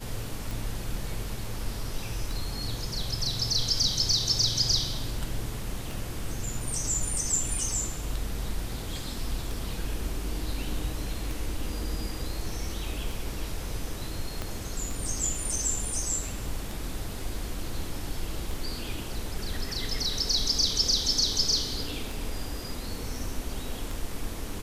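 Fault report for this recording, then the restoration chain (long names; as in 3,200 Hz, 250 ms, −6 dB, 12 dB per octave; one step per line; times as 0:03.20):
scratch tick 33 1/3 rpm
0:14.42: click −17 dBFS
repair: click removal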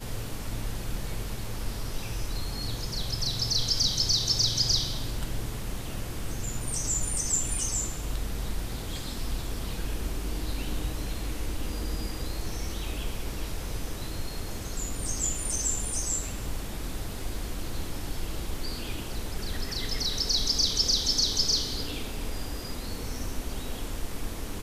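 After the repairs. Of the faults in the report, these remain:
0:14.42: click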